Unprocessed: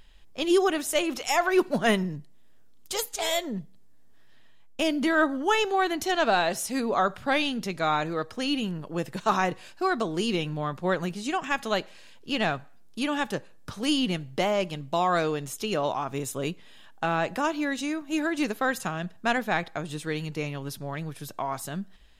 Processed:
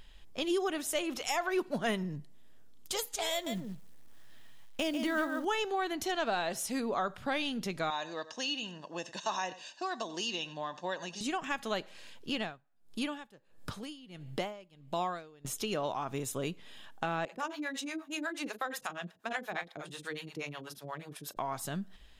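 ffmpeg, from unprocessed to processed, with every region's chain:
ffmpeg -i in.wav -filter_complex "[0:a]asettb=1/sr,asplit=3[link_01][link_02][link_03];[link_01]atrim=end=3.324[link_04];[link_02]atrim=start=3.32:end=5.45,asetpts=PTS-STARTPTS,afade=type=in:duration=0.004:curve=qsin,afade=type=out:start_time=2.126:duration=0.004:curve=qsin,bandreject=frequency=400:width=9.3,aecho=1:1:143:0.398,atrim=end_sample=93933,acrusher=bits=6:mode=log:mix=0:aa=0.000001[link_05];[link_03]atrim=start=5.446[link_06];[link_04][link_05]acrossfade=duration=0.004:curve1=hsin:curve2=qsin[link_07];[link_07][link_06]acrossfade=duration=0.004:curve1=qsin:curve2=hsin,asettb=1/sr,asplit=3[link_08][link_09][link_10];[link_08]atrim=end=7.904[link_11];[link_09]atrim=start=7.9:end=11.21,asetpts=PTS-STARTPTS,afade=type=in:duration=0.004:curve=qsin,afade=type=out:start_time=3.306:duration=0.004:curve=qsin,highpass=480,equalizer=frequency=490:width_type=q:width=4:gain=5,equalizer=frequency=790:width_type=q:width=4:gain=-7,equalizer=frequency=1200:width_type=q:width=4:gain=-7,equalizer=frequency=2000:width_type=q:width=4:gain=-9,equalizer=frequency=6200:width_type=q:width=4:gain=8,lowpass=frequency=6900:width=0.5412,lowpass=frequency=6900:width=1.3066,aecho=1:1:1.1:0.71,atrim=end_sample=145971,aecho=1:1:91:0.126,atrim=end_sample=145971[link_12];[link_10]atrim=start=11.206[link_13];[link_11][link_12]acrossfade=duration=0.004:curve1=hsin:curve2=qsin[link_14];[link_14][link_13]acrossfade=duration=0.004:curve1=qsin:curve2=hsin,asettb=1/sr,asplit=3[link_15][link_16][link_17];[link_15]atrim=end=12.354[link_18];[link_16]atrim=start=12.35:end=15.45,asetpts=PTS-STARTPTS,afade=type=in:duration=0.004:curve=qsin,afade=type=out:start_time=3.096:duration=0.004:curve=qsin,bandreject=frequency=5900:width=11,acompressor=mode=upward:threshold=-40dB:ratio=2.5:attack=3.2:release=140:knee=2.83:detection=peak,aeval=exprs='val(0)*pow(10,-28*(0.5-0.5*cos(2*PI*1.5*n/s))/20)':channel_layout=same[link_19];[link_17]atrim=start=15.446[link_20];[link_18][link_19]acrossfade=duration=0.004:curve1=hsin:curve2=qsin[link_21];[link_21][link_20]acrossfade=duration=0.004:curve1=qsin:curve2=hsin,asettb=1/sr,asplit=3[link_22][link_23][link_24];[link_22]atrim=end=17.254[link_25];[link_23]atrim=start=17.25:end=21.37,asetpts=PTS-STARTPTS,afade=type=in:duration=0.004:curve=qsin,afade=type=out:start_time=4.116:duration=0.004:curve=qsin,highpass=frequency=440:poles=1,asplit=2[link_26][link_27];[link_27]adelay=41,volume=-8.5dB[link_28];[link_26][link_28]amix=inputs=2:normalize=0,atrim=end_sample=181692,acrossover=split=480[link_29][link_30];[link_29]aeval=exprs='val(0)*(1-1/2+1/2*cos(2*PI*8.3*n/s))':channel_layout=same[link_31];[link_30]aeval=exprs='val(0)*(1-1/2-1/2*cos(2*PI*8.3*n/s))':channel_layout=same[link_32];[link_31][link_32]amix=inputs=2:normalize=0[link_33];[link_24]atrim=start=21.366[link_34];[link_25][link_33]acrossfade=duration=0.004:curve1=hsin:curve2=qsin[link_35];[link_35][link_34]acrossfade=duration=0.004:curve1=qsin:curve2=hsin,equalizer=frequency=3300:width=5.3:gain=2,acompressor=threshold=-36dB:ratio=2" out.wav

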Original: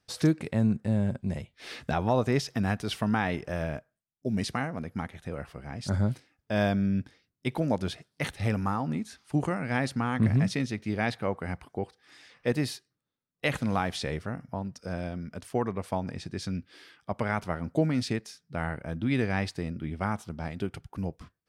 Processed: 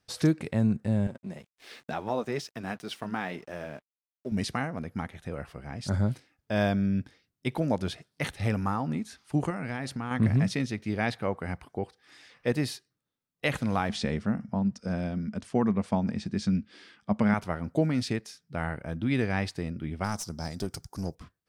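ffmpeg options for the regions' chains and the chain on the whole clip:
ffmpeg -i in.wav -filter_complex "[0:a]asettb=1/sr,asplit=3[link_01][link_02][link_03];[link_01]atrim=end=1.074[link_04];[link_02]atrim=start=1.07:end=4.32,asetpts=PTS-STARTPTS,afade=type=in:duration=0.004:curve=qsin,afade=type=out:start_time=3.246:duration=0.004:curve=qsin,highpass=180,flanger=delay=1.8:depth=4.2:regen=-57:speed=2:shape=triangular,aeval=exprs='sgn(val(0))*max(abs(val(0))-0.00141,0)':channel_layout=same[link_05];[link_03]atrim=start=4.316[link_06];[link_04][link_05]acrossfade=duration=0.004:curve1=hsin:curve2=qsin[link_07];[link_07][link_06]acrossfade=duration=0.004:curve1=qsin:curve2=hsin,asettb=1/sr,asplit=3[link_08][link_09][link_10];[link_08]atrim=end=9.504[link_11];[link_09]atrim=start=9.5:end=10.11,asetpts=PTS-STARTPTS,afade=type=in:duration=0.004:curve=qsin,afade=type=out:start_time=0.606:duration=0.004:curve=qsin,bandreject=frequency=540:width=15,acompressor=threshold=-29dB:ratio=10:attack=3.2:release=140:knee=1:detection=peak[link_12];[link_10]atrim=start=10.106[link_13];[link_11][link_12]acrossfade=duration=0.004:curve1=hsin:curve2=qsin[link_14];[link_14][link_13]acrossfade=duration=0.004:curve1=qsin:curve2=hsin,asettb=1/sr,asplit=3[link_15][link_16][link_17];[link_15]atrim=end=13.894[link_18];[link_16]atrim=start=13.89:end=17.34,asetpts=PTS-STARTPTS,afade=type=in:duration=0.004:curve=qsin,afade=type=out:start_time=3.446:duration=0.004:curve=qsin,lowpass=frequency=8900:width=0.5412,lowpass=frequency=8900:width=1.3066,equalizer=frequency=210:width=3.8:gain=14[link_19];[link_17]atrim=start=17.336[link_20];[link_18][link_19]acrossfade=duration=0.004:curve1=hsin:curve2=qsin[link_21];[link_21][link_20]acrossfade=duration=0.004:curve1=qsin:curve2=hsin,asettb=1/sr,asplit=3[link_22][link_23][link_24];[link_22]atrim=end=20.044[link_25];[link_23]atrim=start=20.04:end=21.15,asetpts=PTS-STARTPTS,afade=type=in:duration=0.004:curve=qsin,afade=type=out:start_time=1.106:duration=0.004:curve=qsin,highshelf=frequency=3900:width_type=q:width=3:gain=11,aeval=exprs='clip(val(0),-1,0.0211)':channel_layout=same[link_26];[link_24]atrim=start=21.146[link_27];[link_25][link_26]acrossfade=duration=0.004:curve1=hsin:curve2=qsin[link_28];[link_28][link_27]acrossfade=duration=0.004:curve1=qsin:curve2=hsin" out.wav

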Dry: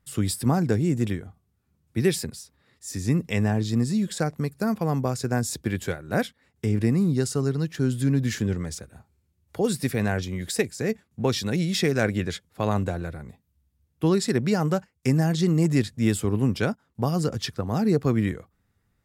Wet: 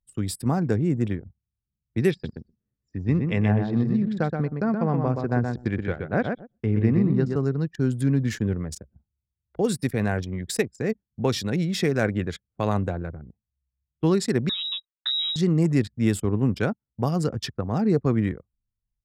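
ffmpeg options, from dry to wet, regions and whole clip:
ffmpeg -i in.wav -filter_complex "[0:a]asettb=1/sr,asplit=3[link_01][link_02][link_03];[link_01]atrim=end=2.114[link_04];[link_02]atrim=start=2.11:end=7.36,asetpts=PTS-STARTPTS,afade=type=in:duration=0.004:curve=qsin,afade=type=out:start_time=5.246:duration=0.004:curve=qsin,lowpass=3300,aecho=1:1:124|248|372:0.562|0.129|0.0297,atrim=end_sample=231525[link_05];[link_03]atrim=start=7.356[link_06];[link_04][link_05]acrossfade=duration=0.004:curve1=hsin:curve2=qsin[link_07];[link_07][link_06]acrossfade=duration=0.004:curve1=qsin:curve2=hsin,asettb=1/sr,asplit=3[link_08][link_09][link_10];[link_08]atrim=end=14.494[link_11];[link_09]atrim=start=14.49:end=15.36,asetpts=PTS-STARTPTS,afade=type=in:duration=0.004:curve=qsin,afade=type=out:start_time=0.866:duration=0.004:curve=qsin,equalizer=frequency=1600:width_type=o:width=0.71:gain=-9.5,acompressor=threshold=-23dB:ratio=2.5:attack=3.2:release=140:knee=1:detection=peak,lowpass=frequency=3400:width_type=q:width=0.5098,lowpass=frequency=3400:width_type=q:width=0.6013,lowpass=frequency=3400:width_type=q:width=0.9,lowpass=frequency=3400:width_type=q:width=2.563,afreqshift=-4000[link_12];[link_10]atrim=start=15.356[link_13];[link_11][link_12]acrossfade=duration=0.004:curve1=hsin:curve2=qsin[link_14];[link_14][link_13]acrossfade=duration=0.004:curve1=qsin:curve2=hsin,anlmdn=6.31,dynaudnorm=framelen=130:gausssize=9:maxgain=3.5dB,adynamicequalizer=threshold=0.01:dfrequency=2300:dqfactor=0.7:tfrequency=2300:tqfactor=0.7:attack=5:release=100:ratio=0.375:range=3:mode=cutabove:tftype=highshelf,volume=-3dB" out.wav

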